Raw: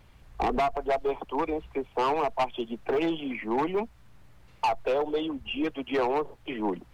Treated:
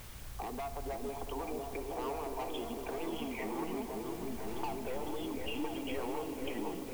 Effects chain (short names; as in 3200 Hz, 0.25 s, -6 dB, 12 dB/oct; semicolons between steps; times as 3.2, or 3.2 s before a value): limiter -29.5 dBFS, peak gain reduction 10 dB; compressor 5:1, threshold -46 dBFS, peak gain reduction 12.5 dB; repeats that get brighter 0.505 s, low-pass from 400 Hz, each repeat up 1 oct, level 0 dB; reverb RT60 4.8 s, pre-delay 47 ms, DRR 9 dB; requantised 10-bit, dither triangular; gain +5.5 dB